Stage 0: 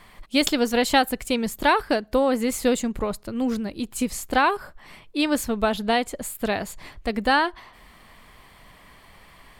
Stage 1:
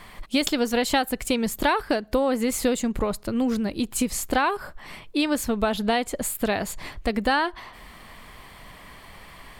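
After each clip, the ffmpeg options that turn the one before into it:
-af "acompressor=threshold=0.0447:ratio=2.5,volume=1.78"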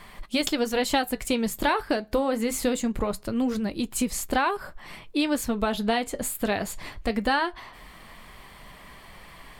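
-af "flanger=delay=5:depth=5:regen=-67:speed=0.23:shape=sinusoidal,volume=1.33"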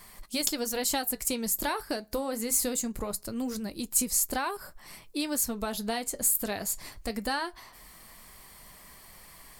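-af "aexciter=amount=5.3:drive=2.7:freq=4600,volume=0.422"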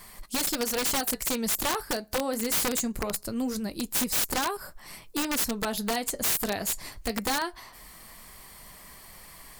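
-af "aeval=exprs='(mod(14.1*val(0)+1,2)-1)/14.1':c=same,volume=1.41"

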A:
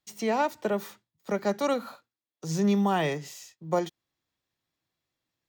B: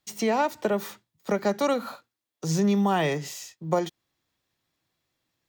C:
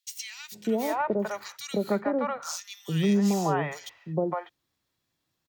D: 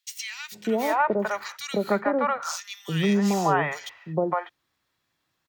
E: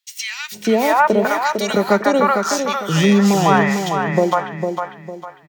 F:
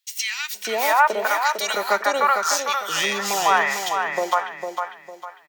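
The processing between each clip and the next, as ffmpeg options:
-af "acompressor=threshold=0.0355:ratio=2,volume=2"
-filter_complex "[0:a]acrossover=split=660|2200[s0][s1][s2];[s0]adelay=450[s3];[s1]adelay=600[s4];[s3][s4][s2]amix=inputs=3:normalize=0"
-af "equalizer=f=1500:t=o:w=2.4:g=8"
-filter_complex "[0:a]dynaudnorm=f=110:g=3:m=2.51,asplit=2[s0][s1];[s1]aecho=0:1:453|906|1359|1812:0.501|0.165|0.0546|0.018[s2];[s0][s2]amix=inputs=2:normalize=0,volume=1.12"
-af "highpass=810,highshelf=f=10000:g=5.5"

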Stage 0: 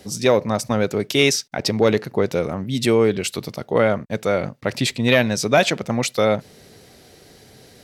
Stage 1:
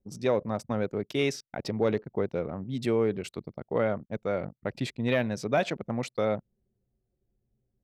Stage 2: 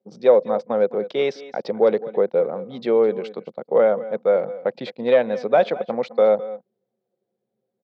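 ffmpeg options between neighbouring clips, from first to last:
-af "anlmdn=63.1,highshelf=f=3000:g=-12,volume=0.355"
-af "highpass=f=200:w=0.5412,highpass=f=200:w=1.3066,equalizer=f=280:t=q:w=4:g=-9,equalizer=f=510:t=q:w=4:g=10,equalizer=f=780:t=q:w=4:g=5,equalizer=f=1900:t=q:w=4:g=-3,equalizer=f=2700:t=q:w=4:g=-7,lowpass=f=4100:w=0.5412,lowpass=f=4100:w=1.3066,aecho=1:1:209|213:0.1|0.112,volume=1.78"

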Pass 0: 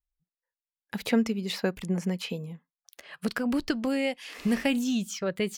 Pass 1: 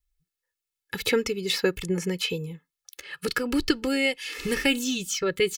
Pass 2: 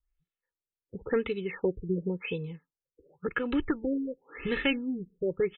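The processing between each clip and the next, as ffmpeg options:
-af "equalizer=f=740:t=o:w=1:g=-13,aecho=1:1:2.3:0.81,volume=2"
-af "asoftclip=type=hard:threshold=0.15,afftfilt=real='re*lt(b*sr/1024,490*pow(4200/490,0.5+0.5*sin(2*PI*0.93*pts/sr)))':imag='im*lt(b*sr/1024,490*pow(4200/490,0.5+0.5*sin(2*PI*0.93*pts/sr)))':win_size=1024:overlap=0.75,volume=0.708"

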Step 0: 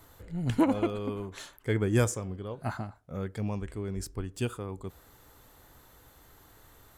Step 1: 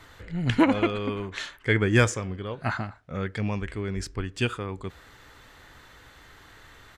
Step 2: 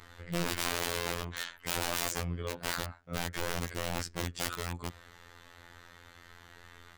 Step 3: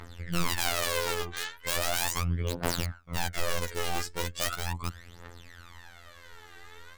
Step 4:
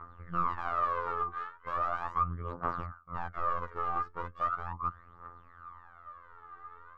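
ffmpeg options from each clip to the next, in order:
-af "firequalizer=gain_entry='entry(790,0);entry(1800,10);entry(13000,-15)':delay=0.05:min_phase=1,volume=1.58"
-af "aeval=exprs='(mod(17.8*val(0)+1,2)-1)/17.8':c=same,afftfilt=real='hypot(re,im)*cos(PI*b)':imag='0':win_size=2048:overlap=0.75"
-af "aeval=exprs='if(lt(val(0),0),0.708*val(0),val(0))':c=same,aphaser=in_gain=1:out_gain=1:delay=2.6:decay=0.72:speed=0.38:type=triangular,volume=1.12"
-af "lowpass=f=1200:t=q:w=12,volume=0.355"

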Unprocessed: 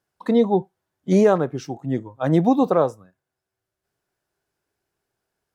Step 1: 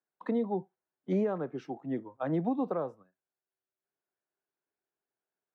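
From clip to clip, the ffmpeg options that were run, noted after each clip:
-filter_complex "[0:a]acrossover=split=210[s0][s1];[s1]acompressor=threshold=0.0708:ratio=6[s2];[s0][s2]amix=inputs=2:normalize=0,acrossover=split=180 3100:gain=0.126 1 0.0891[s3][s4][s5];[s3][s4][s5]amix=inputs=3:normalize=0,agate=range=0.447:threshold=0.00562:ratio=16:detection=peak,volume=0.473"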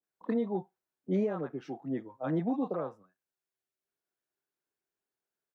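-filter_complex "[0:a]acrossover=split=750[s0][s1];[s1]adelay=30[s2];[s0][s2]amix=inputs=2:normalize=0"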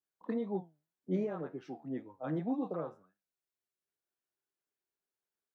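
-af "flanger=delay=9.6:depth=4.1:regen=77:speed=1.9:shape=triangular"

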